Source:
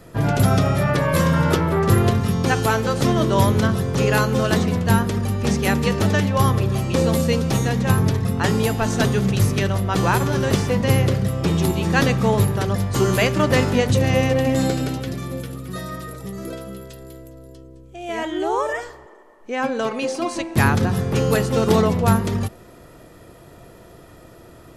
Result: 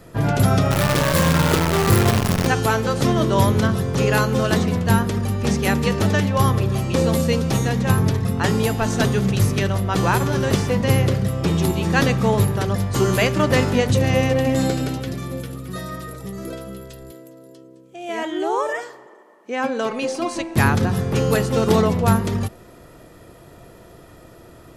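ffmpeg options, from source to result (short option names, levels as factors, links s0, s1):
-filter_complex "[0:a]asplit=3[s0][s1][s2];[s0]afade=t=out:st=0.7:d=0.02[s3];[s1]acrusher=bits=4:dc=4:mix=0:aa=0.000001,afade=t=in:st=0.7:d=0.02,afade=t=out:st=2.46:d=0.02[s4];[s2]afade=t=in:st=2.46:d=0.02[s5];[s3][s4][s5]amix=inputs=3:normalize=0,asettb=1/sr,asplit=3[s6][s7][s8];[s6]atrim=end=17.114[s9];[s7]atrim=start=17.11:end=19.9,asetpts=PTS-STARTPTS,afade=t=in:d=0.004:c=qsin,afade=t=out:st=2.786:d=0.004:c=qsin,highpass=f=160:w=0.5412,highpass=f=160:w=1.3066[s10];[s8]atrim=start=19.896[s11];[s9][s10]acrossfade=d=0.004:c1=hsin:c2=qsin[s12];[s12][s11]acrossfade=d=0.004:c1=qsin:c2=hsin"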